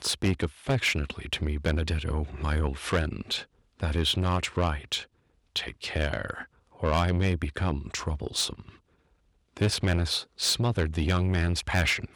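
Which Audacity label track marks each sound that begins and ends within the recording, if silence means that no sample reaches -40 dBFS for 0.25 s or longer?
3.800000	5.040000	sound
5.560000	6.440000	sound
6.800000	8.690000	sound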